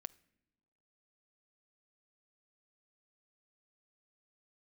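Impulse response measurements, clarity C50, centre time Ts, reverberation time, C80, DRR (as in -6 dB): 22.5 dB, 2 ms, no single decay rate, 25.5 dB, 16.5 dB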